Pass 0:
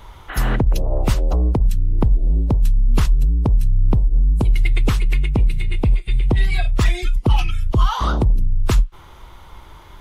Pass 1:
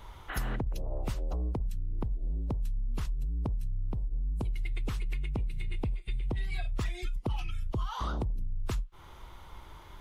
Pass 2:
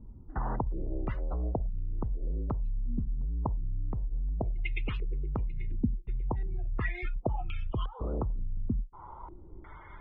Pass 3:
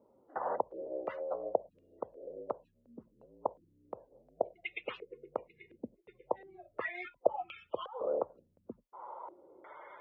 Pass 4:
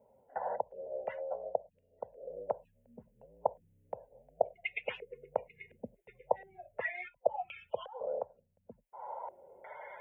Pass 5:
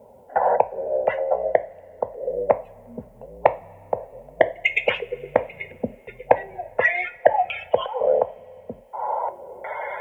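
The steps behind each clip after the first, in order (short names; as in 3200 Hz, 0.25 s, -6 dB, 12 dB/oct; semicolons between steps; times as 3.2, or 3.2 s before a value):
compressor 6:1, threshold -22 dBFS, peak gain reduction 12 dB; gain -7.5 dB
loudest bins only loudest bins 64; stepped low-pass 2.8 Hz 240–2700 Hz
resonant high-pass 540 Hz, resonance Q 4.9; gain -2.5 dB
vocal rider within 4 dB 0.5 s; fixed phaser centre 1200 Hz, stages 6; gain +2.5 dB
sine folder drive 6 dB, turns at -11 dBFS; two-slope reverb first 0.32 s, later 3.4 s, from -21 dB, DRR 11.5 dB; gain +7.5 dB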